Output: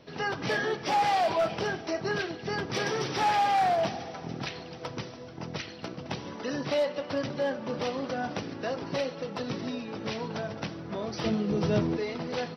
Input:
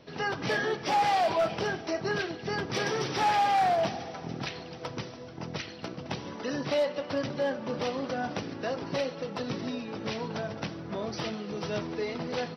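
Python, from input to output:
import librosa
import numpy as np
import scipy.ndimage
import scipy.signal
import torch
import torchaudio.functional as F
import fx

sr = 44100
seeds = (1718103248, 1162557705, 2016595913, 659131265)

y = fx.low_shelf(x, sr, hz=470.0, db=11.5, at=(11.24, 11.97))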